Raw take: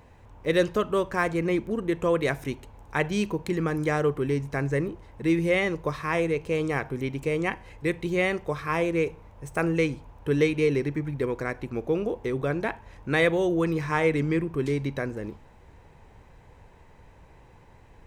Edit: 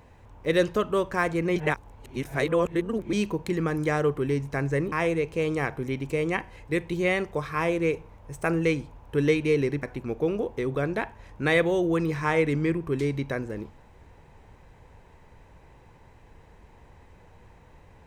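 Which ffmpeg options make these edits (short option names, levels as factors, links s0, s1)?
-filter_complex "[0:a]asplit=5[s0][s1][s2][s3][s4];[s0]atrim=end=1.562[s5];[s1]atrim=start=1.558:end=3.132,asetpts=PTS-STARTPTS,areverse[s6];[s2]atrim=start=3.128:end=4.922[s7];[s3]atrim=start=6.048:end=10.962[s8];[s4]atrim=start=11.498[s9];[s5][s6]acrossfade=d=0.004:c1=hsin:c2=hsin[s10];[s10][s7]acrossfade=d=0.004:c1=hsin:c2=hsin[s11];[s11][s8]acrossfade=d=0.004:c1=hsin:c2=hsin[s12];[s12][s9]acrossfade=d=0.004:c1=hsin:c2=hsin"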